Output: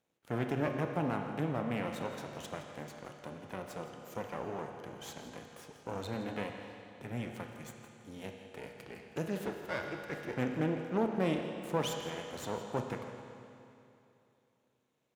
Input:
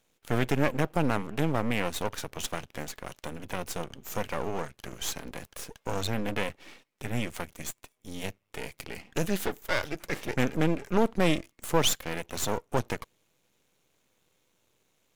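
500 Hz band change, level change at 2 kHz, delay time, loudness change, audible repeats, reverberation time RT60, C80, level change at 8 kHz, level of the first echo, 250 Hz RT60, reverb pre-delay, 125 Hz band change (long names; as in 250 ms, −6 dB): −5.5 dB, −9.0 dB, 167 ms, −6.5 dB, 1, 2.8 s, 5.0 dB, −15.0 dB, −14.0 dB, 2.8 s, 27 ms, −6.5 dB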